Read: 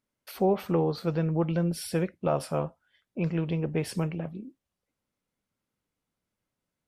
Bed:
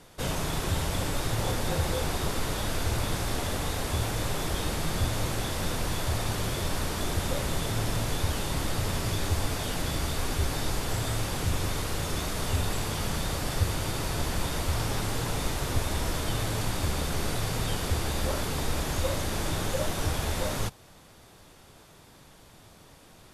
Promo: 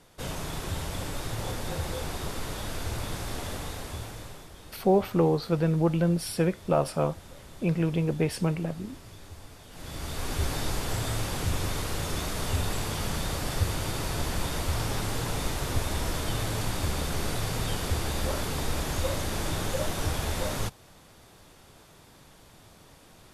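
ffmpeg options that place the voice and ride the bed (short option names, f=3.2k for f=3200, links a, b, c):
-filter_complex "[0:a]adelay=4450,volume=2.5dB[a];[1:a]volume=13dB,afade=t=out:st=3.52:d=0.97:silence=0.211349,afade=t=in:st=9.7:d=0.74:silence=0.133352[b];[a][b]amix=inputs=2:normalize=0"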